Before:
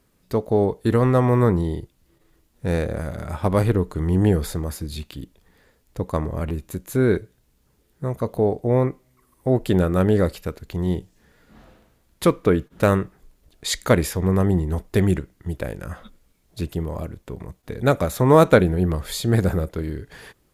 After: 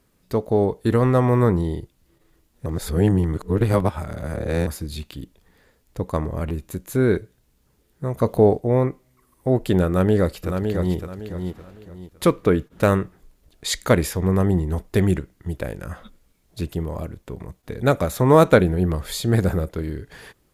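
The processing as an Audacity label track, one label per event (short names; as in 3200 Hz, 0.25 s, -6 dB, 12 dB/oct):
2.660000	4.670000	reverse
8.170000	8.580000	gain +5 dB
9.870000	10.960000	echo throw 0.56 s, feedback 30%, level -6 dB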